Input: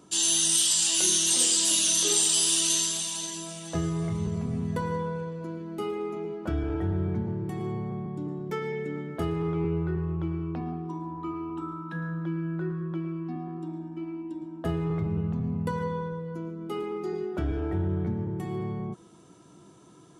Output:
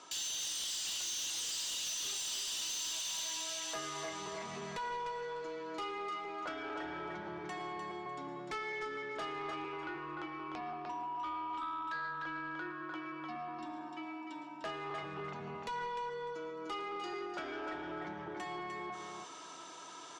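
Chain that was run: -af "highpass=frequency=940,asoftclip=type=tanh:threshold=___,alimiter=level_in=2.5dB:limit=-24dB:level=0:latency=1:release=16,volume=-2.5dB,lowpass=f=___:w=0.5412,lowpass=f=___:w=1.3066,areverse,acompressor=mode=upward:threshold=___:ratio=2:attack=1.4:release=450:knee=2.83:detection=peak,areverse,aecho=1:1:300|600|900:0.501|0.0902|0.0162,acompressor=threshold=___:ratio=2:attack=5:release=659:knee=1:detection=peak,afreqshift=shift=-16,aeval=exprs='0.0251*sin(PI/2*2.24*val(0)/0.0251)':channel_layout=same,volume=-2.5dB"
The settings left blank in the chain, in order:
-14.5dB, 6600, 6600, -48dB, -46dB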